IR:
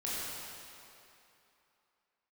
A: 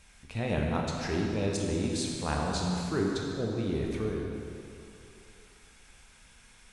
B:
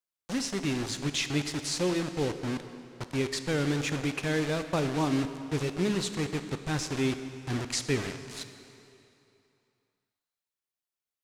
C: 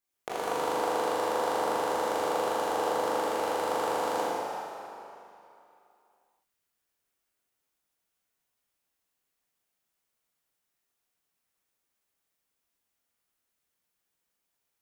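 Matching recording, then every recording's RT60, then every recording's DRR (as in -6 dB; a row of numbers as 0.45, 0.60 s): C; 2.9, 2.9, 2.9 s; -1.0, 9.0, -8.5 dB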